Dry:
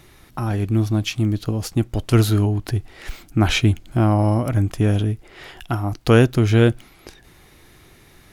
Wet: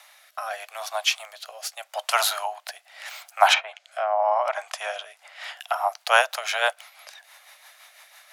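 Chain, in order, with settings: steep high-pass 600 Hz 72 dB/oct; 3.53–5.56 treble ducked by the level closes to 1400 Hz, closed at -21 dBFS; dynamic EQ 880 Hz, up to +7 dB, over -40 dBFS, Q 1.8; rotary speaker horn 0.8 Hz, later 6 Hz, at 4.75; gain +5.5 dB

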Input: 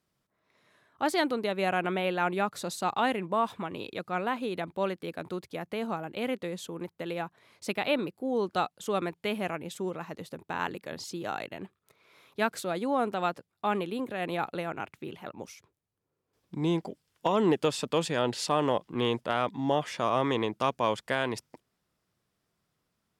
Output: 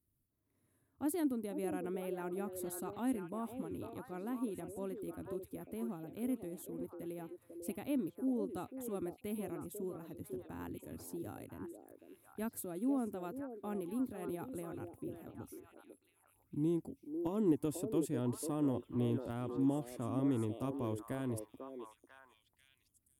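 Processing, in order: EQ curve 100 Hz 0 dB, 180 Hz -16 dB, 270 Hz -5 dB, 490 Hz -20 dB, 900 Hz -24 dB, 1800 Hz -27 dB, 4400 Hz -29 dB, 6200 Hz -23 dB, 11000 Hz -2 dB; delay with a stepping band-pass 0.496 s, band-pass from 460 Hz, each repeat 1.4 oct, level -3 dB; gain +5 dB

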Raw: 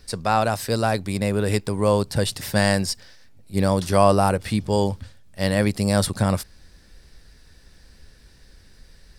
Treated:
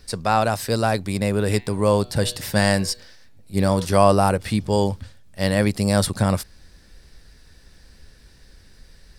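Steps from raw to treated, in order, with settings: 1.52–3.85 de-hum 121.5 Hz, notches 37; gain +1 dB

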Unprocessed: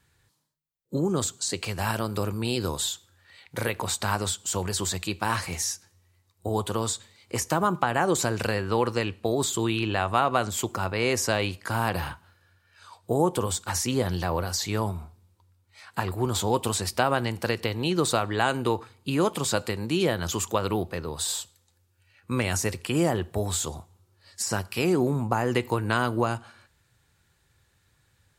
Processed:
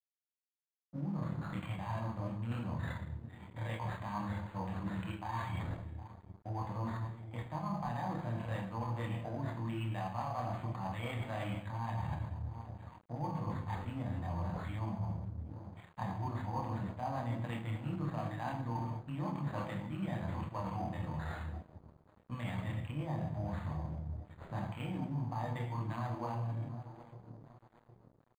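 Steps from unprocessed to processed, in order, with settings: air absorption 210 m; gate -59 dBFS, range -12 dB; fixed phaser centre 2100 Hz, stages 8; dark delay 0.764 s, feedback 52%, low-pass 820 Hz, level -20 dB; on a send at -1.5 dB: reverb RT60 0.85 s, pre-delay 7 ms; on the sum: chorus voices 4, 0.69 Hz, delay 26 ms, depth 1.2 ms; reverse; compressor 6:1, threshold -36 dBFS, peak gain reduction 14 dB; reverse; crossover distortion -55 dBFS; decimation joined by straight lines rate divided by 8×; gain +2 dB

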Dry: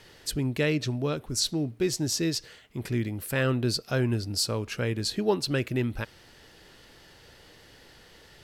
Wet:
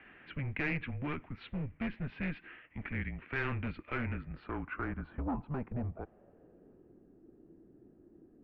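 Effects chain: dynamic EQ 670 Hz, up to -6 dB, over -44 dBFS, Q 1.9; mistuned SSB -140 Hz 170–3000 Hz; overloaded stage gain 28 dB; low-pass sweep 2200 Hz -> 340 Hz, 4–7.07; gain -4.5 dB

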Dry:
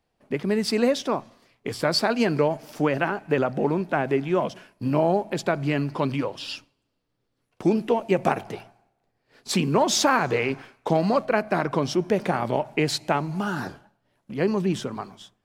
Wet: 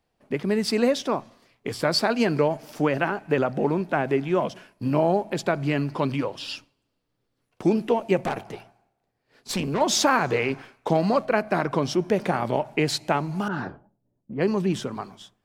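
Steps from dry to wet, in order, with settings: 8.21–9.81 tube stage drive 20 dB, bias 0.55; 13.48–14.65 low-pass opened by the level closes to 300 Hz, open at -20.5 dBFS

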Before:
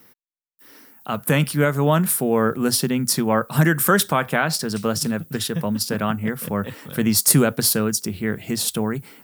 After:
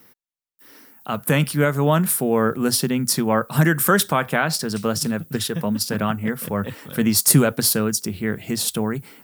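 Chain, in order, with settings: 5.34–7.61 phaser 1.5 Hz, delay 4.7 ms, feedback 23%

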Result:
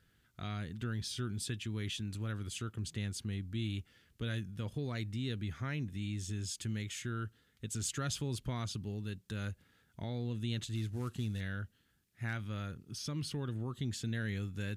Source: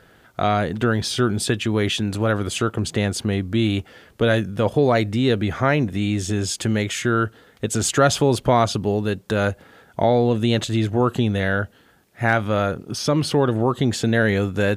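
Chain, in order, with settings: 10.75–11.41 CVSD 64 kbps; passive tone stack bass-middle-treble 6-0-2

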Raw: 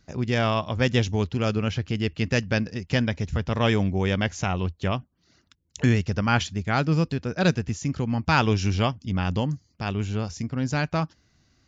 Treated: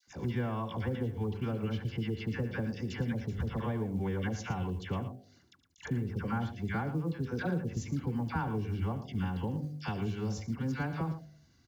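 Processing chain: treble ducked by the level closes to 1400 Hz, closed at -17.5 dBFS; low shelf 260 Hz +2.5 dB; notch 2500 Hz, Q 8.9; de-hum 50.23 Hz, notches 15; compressor 8:1, threshold -26 dBFS, peak gain reduction 12.5 dB; notch comb 630 Hz; vibrato 3.6 Hz 26 cents; dispersion lows, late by 77 ms, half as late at 1000 Hz; companded quantiser 8-bit; on a send: tapped delay 74/113 ms -18/-12 dB; on the sum: attack slew limiter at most 420 dB/s; gain -2.5 dB

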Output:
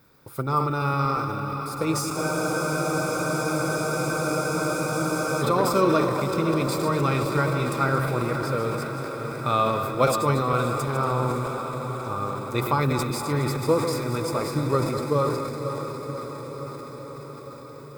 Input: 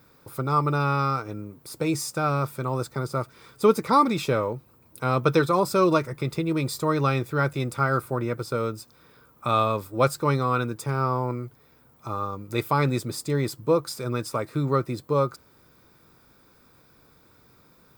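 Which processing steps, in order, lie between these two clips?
regenerating reverse delay 0.117 s, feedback 45%, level -7.5 dB; diffused feedback echo 0.559 s, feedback 71%, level -7.5 dB; transient shaper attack +3 dB, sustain +7 dB; spectral freeze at 2.18, 3.24 s; gain -2 dB

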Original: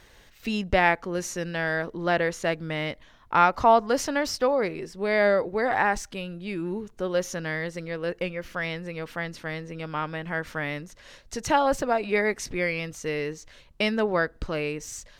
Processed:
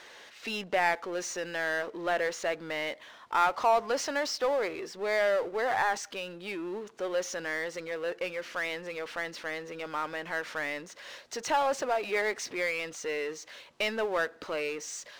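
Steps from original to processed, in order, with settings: BPF 430–6400 Hz; power-law curve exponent 0.7; gain -8 dB

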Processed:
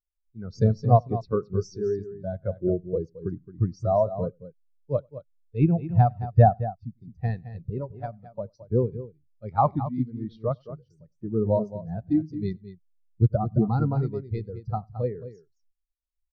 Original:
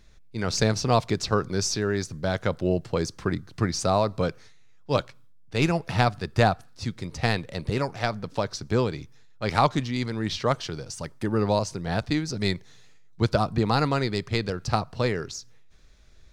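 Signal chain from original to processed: tapped delay 96/218 ms -14.5/-5.5 dB; spectral expander 2.5:1

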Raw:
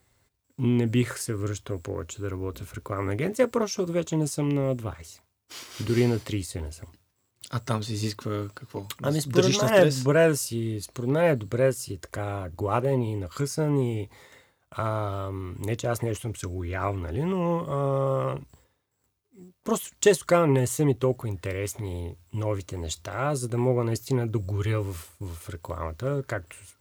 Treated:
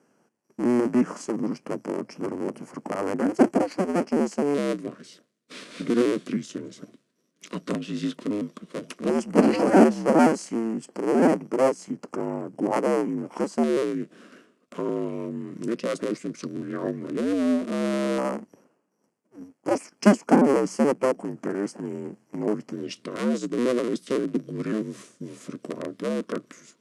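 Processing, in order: cycle switcher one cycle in 2, inverted; tilt shelf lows +7 dB, about 1100 Hz; formant shift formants -5 st; elliptic band-pass 220–9700 Hz, stop band 60 dB; in parallel at -1 dB: compressor, threshold -39 dBFS, peak gain reduction 25.5 dB; on the sum: LFO notch square 0.11 Hz 830–3700 Hz

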